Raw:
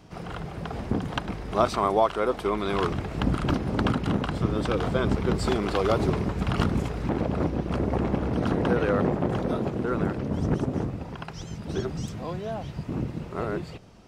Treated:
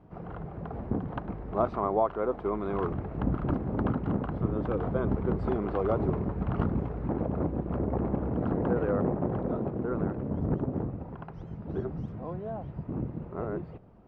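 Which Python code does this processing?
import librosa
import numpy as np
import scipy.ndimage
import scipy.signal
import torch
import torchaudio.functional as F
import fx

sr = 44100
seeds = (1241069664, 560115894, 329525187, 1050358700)

y = scipy.signal.sosfilt(scipy.signal.butter(2, 1100.0, 'lowpass', fs=sr, output='sos'), x)
y = y * 10.0 ** (-3.5 / 20.0)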